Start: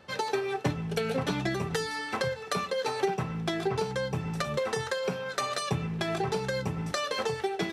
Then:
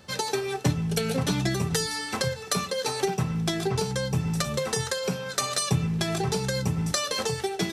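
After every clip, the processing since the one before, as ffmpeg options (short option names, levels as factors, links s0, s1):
-af "bass=f=250:g=8,treble=f=4000:g=13,bandreject=f=50:t=h:w=6,bandreject=f=100:t=h:w=6,bandreject=f=150:t=h:w=6"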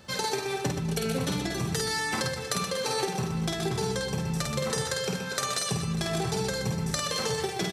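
-af "acompressor=threshold=0.0447:ratio=6,aecho=1:1:50|125|237.5|406.2|659.4:0.631|0.398|0.251|0.158|0.1"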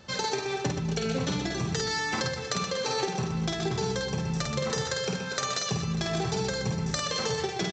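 -af "aresample=16000,aresample=44100"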